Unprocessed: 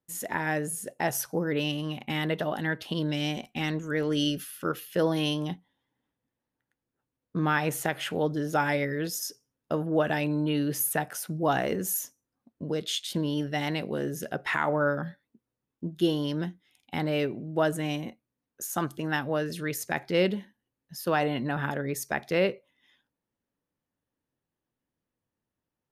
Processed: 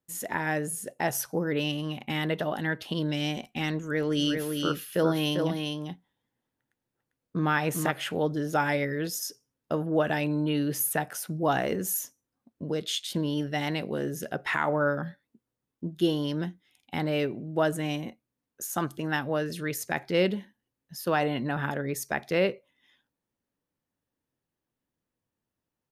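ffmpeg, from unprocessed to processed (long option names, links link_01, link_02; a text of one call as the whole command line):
ffmpeg -i in.wav -filter_complex "[0:a]asplit=3[link_01][link_02][link_03];[link_01]afade=type=out:start_time=4.18:duration=0.02[link_04];[link_02]aecho=1:1:398:0.596,afade=type=in:start_time=4.18:duration=0.02,afade=type=out:start_time=7.9:duration=0.02[link_05];[link_03]afade=type=in:start_time=7.9:duration=0.02[link_06];[link_04][link_05][link_06]amix=inputs=3:normalize=0" out.wav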